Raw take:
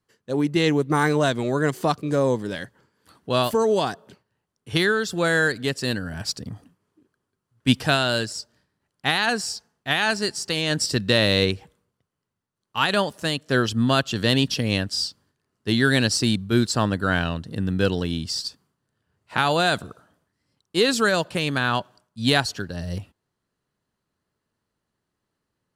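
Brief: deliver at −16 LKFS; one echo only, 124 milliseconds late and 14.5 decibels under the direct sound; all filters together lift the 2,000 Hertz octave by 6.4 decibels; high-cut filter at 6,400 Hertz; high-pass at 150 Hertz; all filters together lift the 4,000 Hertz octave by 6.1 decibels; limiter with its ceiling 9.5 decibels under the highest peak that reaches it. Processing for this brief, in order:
high-pass filter 150 Hz
low-pass filter 6,400 Hz
parametric band 2,000 Hz +7.5 dB
parametric band 4,000 Hz +5.5 dB
brickwall limiter −8.5 dBFS
single-tap delay 124 ms −14.5 dB
level +6 dB

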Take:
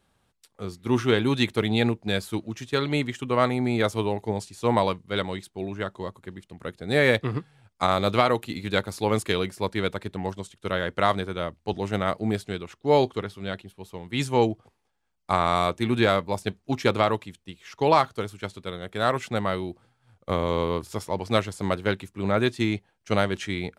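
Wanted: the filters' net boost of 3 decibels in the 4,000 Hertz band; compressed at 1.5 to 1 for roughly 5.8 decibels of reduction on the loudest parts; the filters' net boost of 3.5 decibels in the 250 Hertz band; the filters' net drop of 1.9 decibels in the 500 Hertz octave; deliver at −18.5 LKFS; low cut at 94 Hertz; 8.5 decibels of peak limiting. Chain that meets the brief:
high-pass filter 94 Hz
parametric band 250 Hz +5.5 dB
parametric band 500 Hz −4 dB
parametric band 4,000 Hz +3.5 dB
downward compressor 1.5 to 1, threshold −31 dBFS
level +13.5 dB
brickwall limiter −3.5 dBFS

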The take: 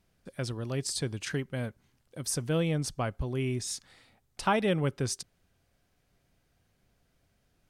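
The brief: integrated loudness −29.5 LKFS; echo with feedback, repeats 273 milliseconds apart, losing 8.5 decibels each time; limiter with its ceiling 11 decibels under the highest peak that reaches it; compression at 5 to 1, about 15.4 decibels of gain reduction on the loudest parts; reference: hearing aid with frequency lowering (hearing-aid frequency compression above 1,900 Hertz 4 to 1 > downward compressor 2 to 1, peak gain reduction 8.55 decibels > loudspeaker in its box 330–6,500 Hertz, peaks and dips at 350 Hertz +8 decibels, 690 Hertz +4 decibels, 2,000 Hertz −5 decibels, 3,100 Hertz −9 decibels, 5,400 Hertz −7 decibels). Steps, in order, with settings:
downward compressor 5 to 1, threshold −40 dBFS
brickwall limiter −35.5 dBFS
repeating echo 273 ms, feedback 38%, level −8.5 dB
hearing-aid frequency compression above 1,900 Hz 4 to 1
downward compressor 2 to 1, threshold −52 dBFS
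loudspeaker in its box 330–6,500 Hz, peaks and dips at 350 Hz +8 dB, 690 Hz +4 dB, 2,000 Hz −5 dB, 3,100 Hz −9 dB, 5,400 Hz −7 dB
level +24 dB

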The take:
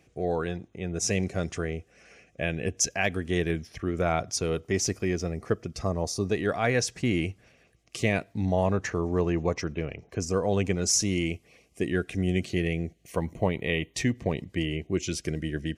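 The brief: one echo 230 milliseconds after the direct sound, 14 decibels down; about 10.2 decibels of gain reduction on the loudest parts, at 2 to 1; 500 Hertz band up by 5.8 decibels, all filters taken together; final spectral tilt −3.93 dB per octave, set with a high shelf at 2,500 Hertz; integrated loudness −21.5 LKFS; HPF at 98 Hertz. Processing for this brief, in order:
high-pass filter 98 Hz
parametric band 500 Hz +7 dB
high-shelf EQ 2,500 Hz +5.5 dB
downward compressor 2 to 1, threshold −35 dBFS
single-tap delay 230 ms −14 dB
level +12 dB

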